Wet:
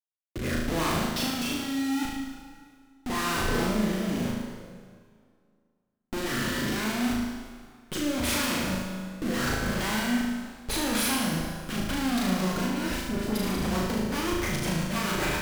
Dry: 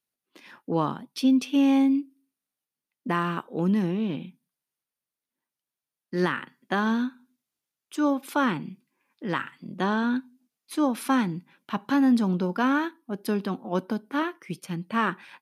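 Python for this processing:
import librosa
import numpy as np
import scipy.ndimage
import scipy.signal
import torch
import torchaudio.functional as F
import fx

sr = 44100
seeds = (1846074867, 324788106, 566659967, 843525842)

p1 = fx.delta_mod(x, sr, bps=32000, step_db=-35.5, at=(6.29, 6.95))
p2 = fx.low_shelf(p1, sr, hz=210.0, db=-7.0)
p3 = fx.leveller(p2, sr, passes=3)
p4 = fx.schmitt(p3, sr, flips_db=-42.0)
p5 = fx.dispersion(p4, sr, late='highs', ms=105.0, hz=1400.0, at=(12.66, 13.56))
p6 = fx.rotary_switch(p5, sr, hz=0.8, then_hz=7.5, switch_at_s=12.71)
p7 = p6 + fx.room_flutter(p6, sr, wall_m=6.4, rt60_s=0.89, dry=0)
p8 = fx.rev_plate(p7, sr, seeds[0], rt60_s=2.1, hf_ratio=0.8, predelay_ms=0, drr_db=5.5)
y = F.gain(torch.from_numpy(p8), -7.0).numpy()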